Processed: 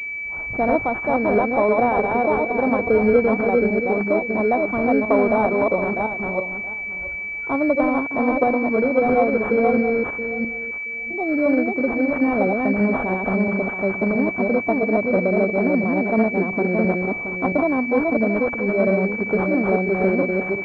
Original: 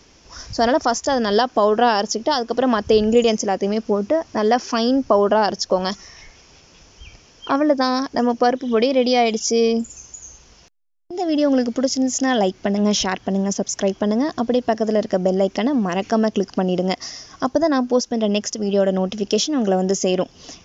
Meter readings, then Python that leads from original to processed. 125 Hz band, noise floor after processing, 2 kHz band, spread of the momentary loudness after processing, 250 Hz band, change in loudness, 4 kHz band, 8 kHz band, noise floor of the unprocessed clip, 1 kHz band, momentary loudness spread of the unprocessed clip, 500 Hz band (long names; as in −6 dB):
0.0 dB, −29 dBFS, +7.5 dB, 7 LU, 0.0 dB, −0.5 dB, below −25 dB, can't be measured, −51 dBFS, −1.5 dB, 7 LU, −0.5 dB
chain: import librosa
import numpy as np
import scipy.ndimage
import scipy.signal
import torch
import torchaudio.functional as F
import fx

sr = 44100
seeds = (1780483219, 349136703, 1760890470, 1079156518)

y = fx.reverse_delay_fb(x, sr, ms=337, feedback_pct=40, wet_db=-2)
y = fx.pwm(y, sr, carrier_hz=2300.0)
y = y * librosa.db_to_amplitude(-2.5)